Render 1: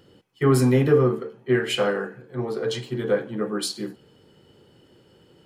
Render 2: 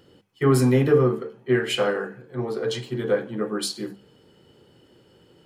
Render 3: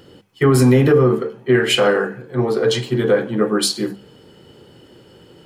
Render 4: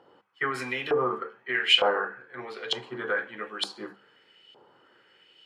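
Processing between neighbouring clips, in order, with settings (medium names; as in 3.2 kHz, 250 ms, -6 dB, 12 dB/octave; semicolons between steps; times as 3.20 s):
hum notches 50/100/150/200 Hz
loudness maximiser +14 dB; trim -4.5 dB
LFO band-pass saw up 1.1 Hz 820–3200 Hz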